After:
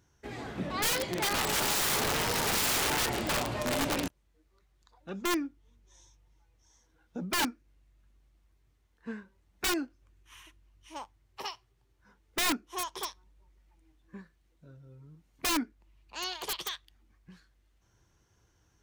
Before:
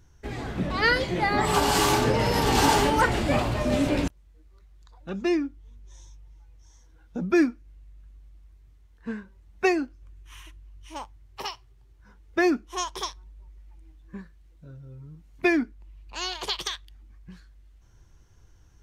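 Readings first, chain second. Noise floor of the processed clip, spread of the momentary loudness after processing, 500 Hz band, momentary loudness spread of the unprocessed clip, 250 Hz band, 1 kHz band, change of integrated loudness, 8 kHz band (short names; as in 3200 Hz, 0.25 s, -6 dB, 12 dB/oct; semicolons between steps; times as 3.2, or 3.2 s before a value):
-70 dBFS, 18 LU, -10.0 dB, 20 LU, -10.0 dB, -8.0 dB, -5.5 dB, +1.5 dB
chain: HPF 180 Hz 6 dB/oct; wrapped overs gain 19 dB; gain -4.5 dB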